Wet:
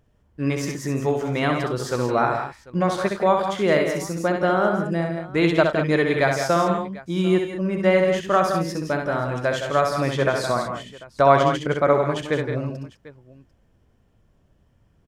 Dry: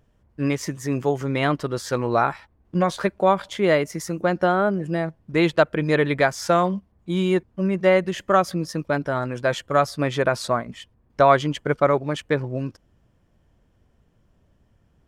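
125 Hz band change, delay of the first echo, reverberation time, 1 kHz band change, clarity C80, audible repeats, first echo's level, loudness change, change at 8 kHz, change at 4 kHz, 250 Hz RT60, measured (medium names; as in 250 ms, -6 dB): +0.5 dB, 65 ms, no reverb, +0.5 dB, no reverb, 5, -5.0 dB, +0.5 dB, +0.5 dB, +0.5 dB, no reverb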